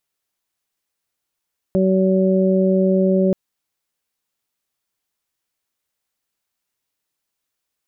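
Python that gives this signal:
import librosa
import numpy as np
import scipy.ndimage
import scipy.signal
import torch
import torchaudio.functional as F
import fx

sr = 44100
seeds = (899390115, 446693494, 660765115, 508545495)

y = fx.additive_steady(sr, length_s=1.58, hz=189.0, level_db=-15.5, upper_db=(-3.0, -4))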